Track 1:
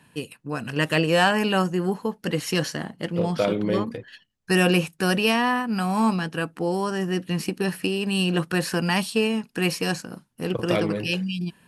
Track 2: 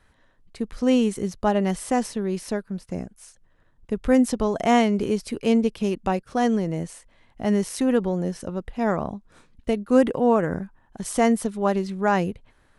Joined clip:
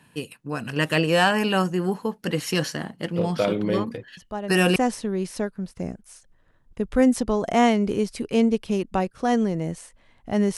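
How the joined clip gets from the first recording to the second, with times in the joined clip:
track 1
0:04.17: mix in track 2 from 0:01.29 0.59 s −10 dB
0:04.76: continue with track 2 from 0:01.88

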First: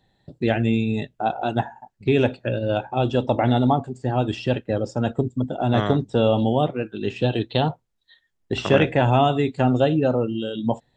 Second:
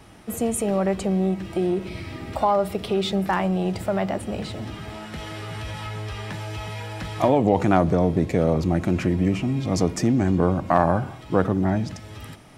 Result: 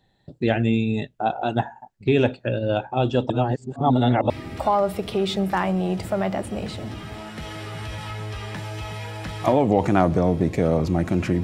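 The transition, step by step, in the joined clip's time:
first
0:03.30–0:04.30: reverse
0:04.30: continue with second from 0:02.06

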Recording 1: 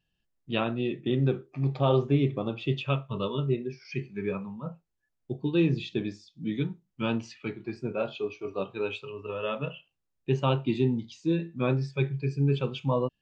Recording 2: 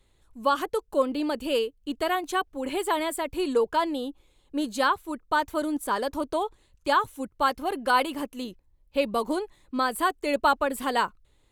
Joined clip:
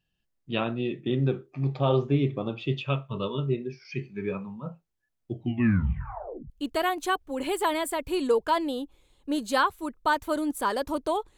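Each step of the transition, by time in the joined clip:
recording 1
0:05.25: tape stop 1.25 s
0:06.50: continue with recording 2 from 0:01.76

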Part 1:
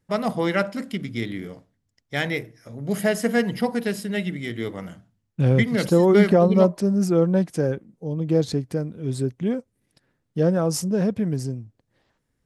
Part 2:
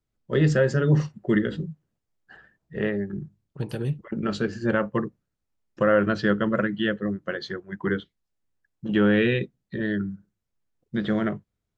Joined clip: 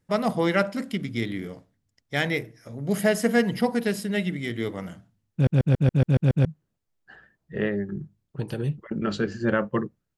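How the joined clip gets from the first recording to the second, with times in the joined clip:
part 1
0:05.33: stutter in place 0.14 s, 8 plays
0:06.45: continue with part 2 from 0:01.66

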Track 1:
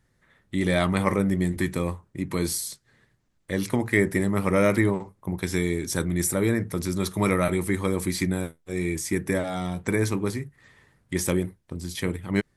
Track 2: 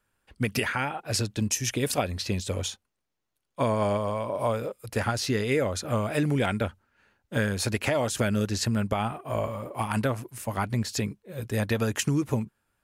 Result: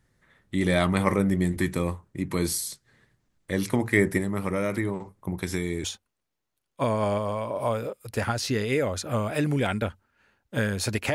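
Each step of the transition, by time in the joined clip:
track 1
0:04.17–0:05.84: downward compressor 3 to 1, threshold −25 dBFS
0:05.84: continue with track 2 from 0:02.63

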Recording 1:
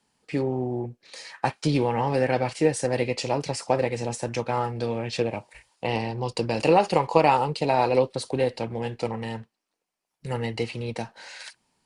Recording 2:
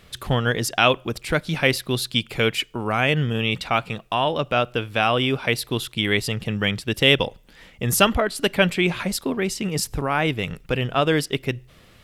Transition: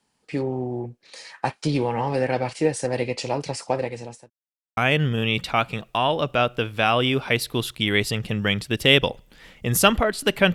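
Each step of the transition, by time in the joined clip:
recording 1
0:03.46–0:04.30: fade out equal-power
0:04.30–0:04.77: silence
0:04.77: continue with recording 2 from 0:02.94

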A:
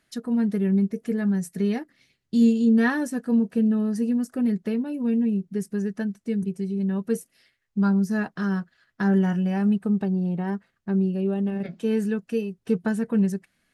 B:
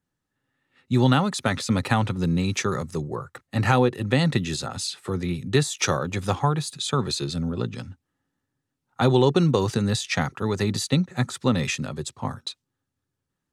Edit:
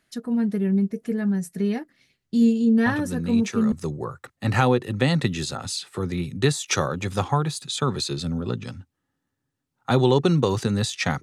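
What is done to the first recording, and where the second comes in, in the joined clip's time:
A
0:02.86: mix in B from 0:01.97 0.86 s −6.5 dB
0:03.72: continue with B from 0:02.83

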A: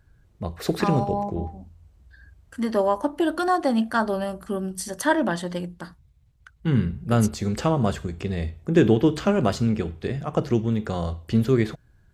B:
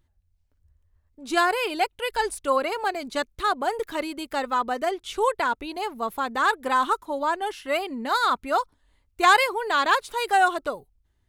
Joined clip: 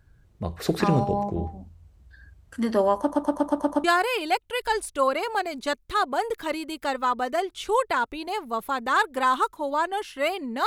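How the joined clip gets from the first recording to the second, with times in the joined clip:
A
0:03.00: stutter in place 0.12 s, 7 plays
0:03.84: continue with B from 0:01.33

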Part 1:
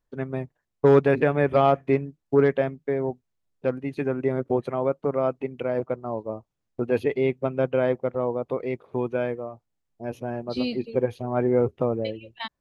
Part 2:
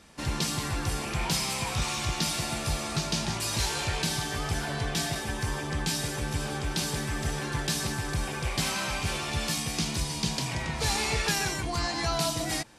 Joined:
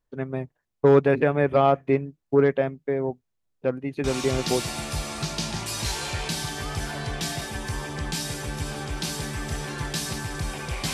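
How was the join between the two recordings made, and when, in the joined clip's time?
part 1
0:04.36: continue with part 2 from 0:02.10, crossfade 0.64 s logarithmic

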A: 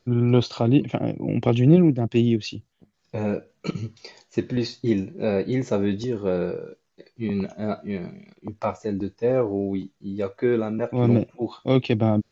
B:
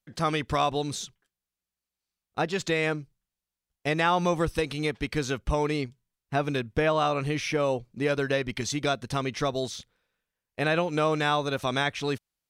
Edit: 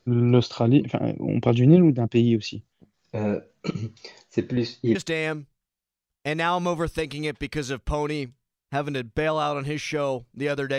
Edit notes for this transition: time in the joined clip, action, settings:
A
0:04.53–0:04.95: low-pass filter 5,000 Hz 12 dB per octave
0:04.95: continue with B from 0:02.55

